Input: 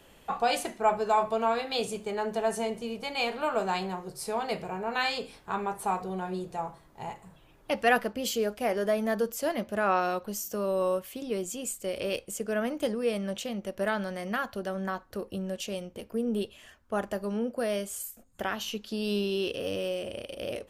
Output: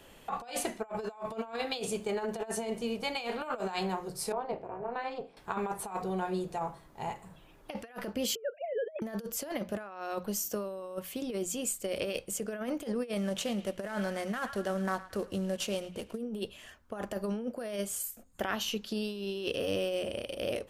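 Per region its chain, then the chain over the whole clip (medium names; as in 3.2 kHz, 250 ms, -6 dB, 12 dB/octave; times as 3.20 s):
4.32–5.37 s: band-pass filter 530 Hz, Q 1.1 + AM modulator 250 Hz, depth 65%
8.35–9.02 s: formants replaced by sine waves + low-pass 2.2 kHz
13.17–16.18 s: CVSD coder 64 kbps + band-passed feedback delay 110 ms, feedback 49%, band-pass 2.1 kHz, level -14 dB
whole clip: hum notches 60/120/180 Hz; compressor with a negative ratio -32 dBFS, ratio -0.5; trim -1.5 dB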